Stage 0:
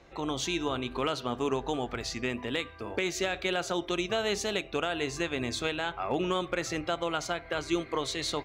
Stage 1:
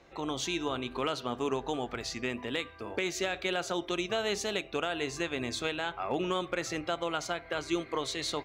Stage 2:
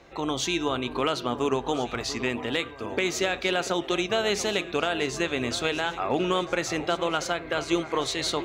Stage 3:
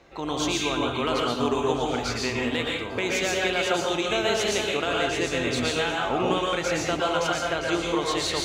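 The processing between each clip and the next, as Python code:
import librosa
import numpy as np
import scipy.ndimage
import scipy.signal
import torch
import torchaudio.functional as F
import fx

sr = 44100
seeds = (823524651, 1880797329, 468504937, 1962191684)

y1 = fx.low_shelf(x, sr, hz=100.0, db=-6.0)
y1 = y1 * librosa.db_to_amplitude(-1.5)
y2 = fx.echo_alternate(y1, sr, ms=687, hz=1400.0, feedback_pct=68, wet_db=-13.0)
y2 = y2 * librosa.db_to_amplitude(6.0)
y3 = fx.rev_plate(y2, sr, seeds[0], rt60_s=0.53, hf_ratio=1.0, predelay_ms=105, drr_db=-2.0)
y3 = y3 * librosa.db_to_amplitude(-2.0)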